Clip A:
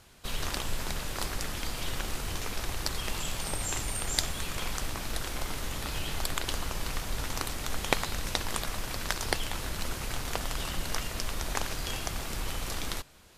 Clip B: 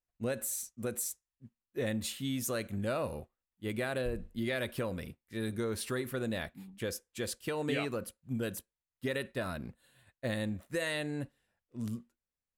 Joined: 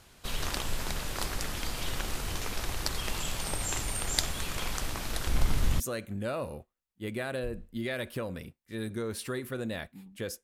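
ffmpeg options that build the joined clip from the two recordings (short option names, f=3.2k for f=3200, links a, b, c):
-filter_complex "[0:a]asettb=1/sr,asplit=3[a][b][c];[a]atrim=end=5.274[d];[b]atrim=start=5.27:end=5.8,asetpts=PTS-STARTPTS,afade=t=in:d=0.004:c=qsin,afade=t=out:st=0.526:d=0.004:c=qsin,bass=f=250:g=11,treble=f=4k:g=-1[e];[c]atrim=start=5.796[f];[d][e]acrossfade=d=0.004:c1=hsin:c2=qsin[g];[g][f]acrossfade=d=0.004:c1=qsin:c2=hsin,apad=whole_dur=10.43,atrim=end=10.43,atrim=end=5.802[h];[1:a]atrim=start=2.418:end=7.05[i];[h][i]acrossfade=d=0.004:c1=hsin:c2=hsin"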